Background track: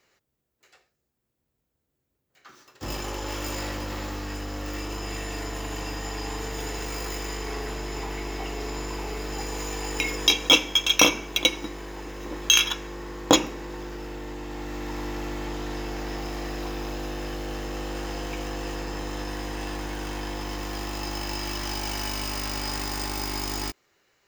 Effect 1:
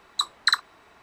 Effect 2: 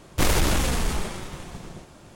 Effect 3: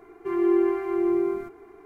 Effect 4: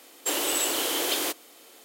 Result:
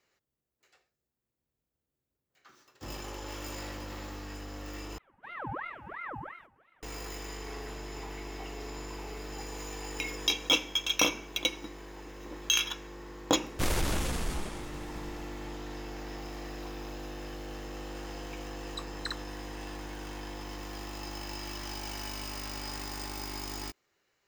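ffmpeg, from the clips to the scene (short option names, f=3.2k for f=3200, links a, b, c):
-filter_complex "[0:a]volume=-8.5dB[a];[3:a]aeval=exprs='val(0)*sin(2*PI*1100*n/s+1100*0.6/2.9*sin(2*PI*2.9*n/s))':c=same[b];[a]asplit=2[c][d];[c]atrim=end=4.984[e];[b]atrim=end=1.85,asetpts=PTS-STARTPTS,volume=-14.5dB[f];[d]atrim=start=6.826[g];[2:a]atrim=end=2.15,asetpts=PTS-STARTPTS,volume=-8.5dB,afade=t=in:d=0.004:c=hsin,afade=t=out:st=2.146:d=0.004:c=hsin,adelay=13410[h];[1:a]atrim=end=1.02,asetpts=PTS-STARTPTS,volume=-17dB,afade=t=in:d=0.004:c=hsin,afade=t=out:st=1.016:d=0.004:c=hsin,adelay=18580[i];[e][f]acrossfade=d=0.004:c1=hsin:c2=hsin[j];[j][g]acrossfade=d=0.004:c1=hsin:c2=hsin[k];[k][h][i]amix=inputs=3:normalize=0"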